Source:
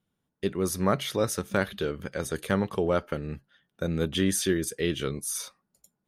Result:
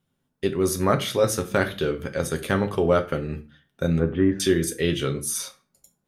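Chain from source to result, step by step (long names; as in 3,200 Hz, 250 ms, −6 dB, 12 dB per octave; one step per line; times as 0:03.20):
0:03.99–0:04.40: low-pass filter 1,700 Hz 24 dB per octave
convolution reverb RT60 0.35 s, pre-delay 7 ms, DRR 5 dB
level +3.5 dB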